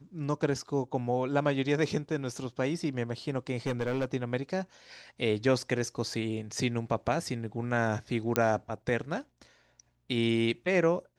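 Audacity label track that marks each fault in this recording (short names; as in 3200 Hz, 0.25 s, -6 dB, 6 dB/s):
3.660000	4.050000	clipped -25.5 dBFS
8.360000	8.360000	pop -9 dBFS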